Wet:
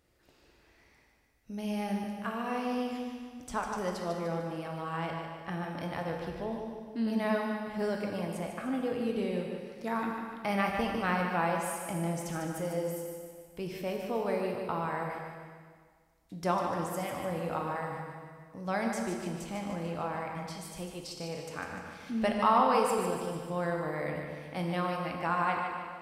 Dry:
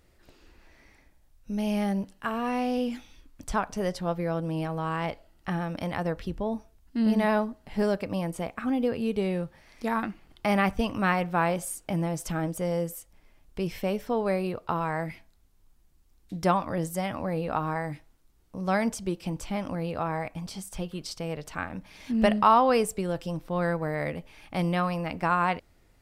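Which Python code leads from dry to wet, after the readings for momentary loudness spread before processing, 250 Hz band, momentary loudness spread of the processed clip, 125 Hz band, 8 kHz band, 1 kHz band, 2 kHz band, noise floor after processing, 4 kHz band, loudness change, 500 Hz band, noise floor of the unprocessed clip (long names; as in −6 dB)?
11 LU, −5.5 dB, 11 LU, −6.5 dB, −3.5 dB, −3.5 dB, −3.5 dB, −64 dBFS, −3.5 dB, −4.5 dB, −4.0 dB, −62 dBFS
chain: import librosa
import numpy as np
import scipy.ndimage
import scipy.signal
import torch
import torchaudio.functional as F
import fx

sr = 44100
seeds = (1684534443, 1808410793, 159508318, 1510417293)

y = fx.highpass(x, sr, hz=110.0, slope=6)
y = fx.echo_feedback(y, sr, ms=149, feedback_pct=47, wet_db=-7.0)
y = fx.rev_plate(y, sr, seeds[0], rt60_s=1.7, hf_ratio=0.95, predelay_ms=0, drr_db=2.5)
y = y * 10.0 ** (-6.5 / 20.0)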